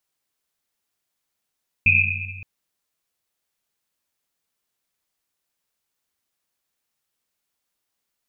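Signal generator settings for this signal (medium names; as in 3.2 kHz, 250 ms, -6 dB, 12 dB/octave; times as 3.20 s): Risset drum length 0.57 s, pitch 94 Hz, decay 2.40 s, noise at 2.5 kHz, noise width 230 Hz, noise 70%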